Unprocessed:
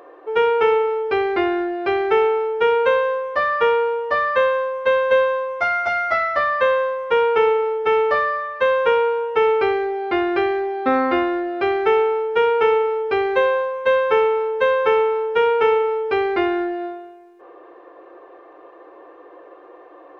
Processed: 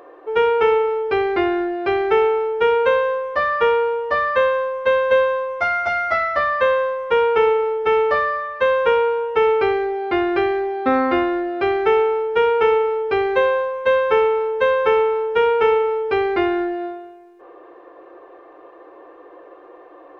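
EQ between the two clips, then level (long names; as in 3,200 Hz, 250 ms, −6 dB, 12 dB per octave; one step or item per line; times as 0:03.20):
low-shelf EQ 150 Hz +6 dB
0.0 dB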